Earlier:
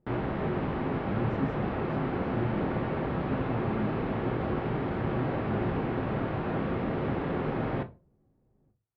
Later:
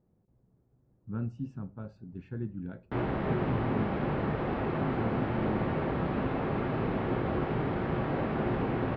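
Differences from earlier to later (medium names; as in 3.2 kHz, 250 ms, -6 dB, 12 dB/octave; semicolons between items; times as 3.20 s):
speech: send -10.0 dB; background: entry +2.85 s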